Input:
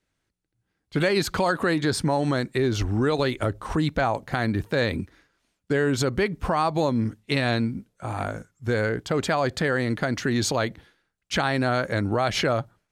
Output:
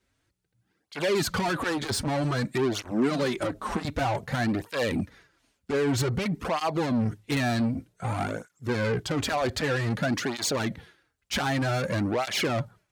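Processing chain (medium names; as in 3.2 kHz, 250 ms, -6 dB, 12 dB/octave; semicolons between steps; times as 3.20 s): saturation -27 dBFS, distortion -8 dB; 2.91–3.85 s: resonant low shelf 140 Hz -8 dB, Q 3; cancelling through-zero flanger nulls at 0.53 Hz, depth 6.8 ms; trim +6.5 dB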